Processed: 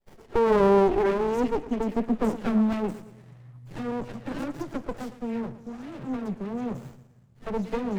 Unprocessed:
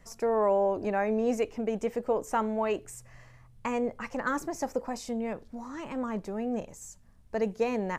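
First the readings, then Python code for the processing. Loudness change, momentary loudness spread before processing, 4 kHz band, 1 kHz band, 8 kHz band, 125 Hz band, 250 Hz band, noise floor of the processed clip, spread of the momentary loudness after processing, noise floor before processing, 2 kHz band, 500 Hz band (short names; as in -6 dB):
+4.0 dB, 13 LU, +2.5 dB, +2.0 dB, n/a, +8.5 dB, +6.0 dB, -55 dBFS, 17 LU, -56 dBFS, -1.0 dB, +3.0 dB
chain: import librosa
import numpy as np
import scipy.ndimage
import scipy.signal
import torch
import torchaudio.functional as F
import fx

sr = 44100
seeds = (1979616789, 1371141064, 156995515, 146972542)

p1 = fx.dispersion(x, sr, late='lows', ms=135.0, hz=1900.0)
p2 = fx.filter_sweep_highpass(p1, sr, from_hz=370.0, to_hz=130.0, start_s=0.98, end_s=3.65, q=6.3)
p3 = p2 + fx.echo_feedback(p2, sr, ms=114, feedback_pct=46, wet_db=-15.5, dry=0)
y = fx.running_max(p3, sr, window=33)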